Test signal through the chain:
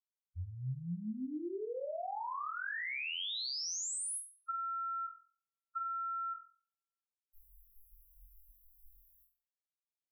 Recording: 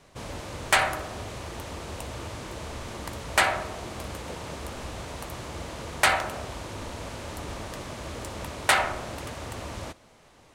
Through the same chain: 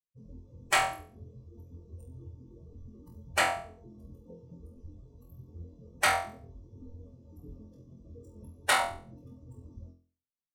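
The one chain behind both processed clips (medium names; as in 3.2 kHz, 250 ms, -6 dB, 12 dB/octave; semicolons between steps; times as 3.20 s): expander on every frequency bin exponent 3; flutter echo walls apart 4 m, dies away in 0.4 s; trim -1.5 dB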